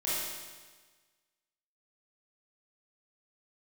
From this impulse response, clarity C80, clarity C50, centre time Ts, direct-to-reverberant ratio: 0.0 dB, −3.5 dB, 112 ms, −10.0 dB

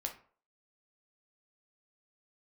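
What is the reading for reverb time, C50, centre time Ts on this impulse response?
0.50 s, 10.5 dB, 13 ms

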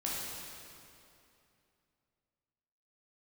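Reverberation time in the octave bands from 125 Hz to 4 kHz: 3.0, 2.9, 2.8, 2.6, 2.5, 2.2 seconds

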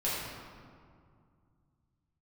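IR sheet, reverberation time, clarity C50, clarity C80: 2.2 s, −1.5 dB, 0.5 dB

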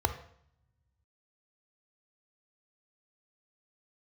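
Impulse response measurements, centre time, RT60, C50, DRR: 9 ms, 0.65 s, 12.0 dB, 9.0 dB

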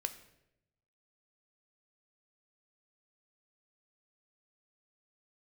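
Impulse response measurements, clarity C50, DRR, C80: 13.0 dB, 8.5 dB, 15.5 dB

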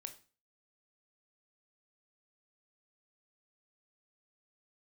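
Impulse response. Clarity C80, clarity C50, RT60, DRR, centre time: 18.5 dB, 13.5 dB, 0.35 s, 7.0 dB, 9 ms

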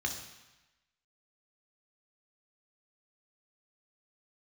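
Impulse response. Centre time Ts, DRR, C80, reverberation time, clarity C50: 27 ms, 2.0 dB, 9.0 dB, 1.0 s, 6.5 dB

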